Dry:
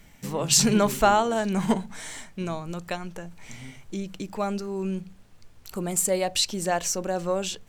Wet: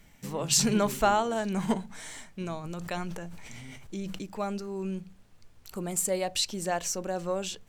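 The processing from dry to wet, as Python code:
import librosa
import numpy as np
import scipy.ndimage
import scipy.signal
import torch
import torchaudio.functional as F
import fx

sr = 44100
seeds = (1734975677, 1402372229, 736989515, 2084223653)

y = fx.sustainer(x, sr, db_per_s=24.0, at=(2.63, 4.22), fade=0.02)
y = y * librosa.db_to_amplitude(-4.5)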